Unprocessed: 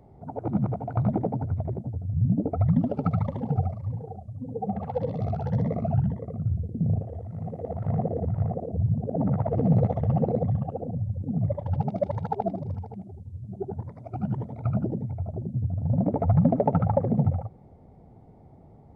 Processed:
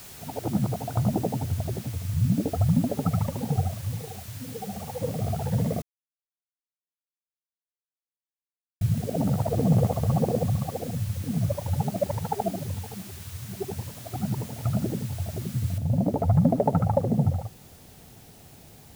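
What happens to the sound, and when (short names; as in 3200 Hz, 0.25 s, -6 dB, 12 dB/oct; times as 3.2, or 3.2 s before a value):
1–3.12 LPF 1400 Hz 24 dB/oct
4.05–5.02 compressor 2:1, threshold -35 dBFS
5.82–8.81 mute
9.61–11.65 bell 1100 Hz +9 dB 0.31 oct
15.78 noise floor step -45 dB -54 dB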